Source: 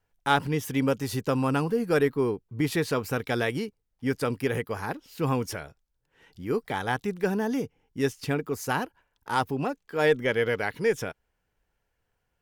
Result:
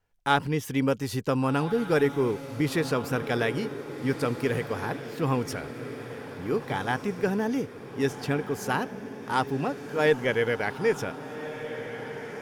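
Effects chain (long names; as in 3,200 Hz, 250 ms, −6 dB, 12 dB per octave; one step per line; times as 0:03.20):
high-shelf EQ 11,000 Hz −6 dB
feedback delay with all-pass diffusion 1,549 ms, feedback 56%, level −11 dB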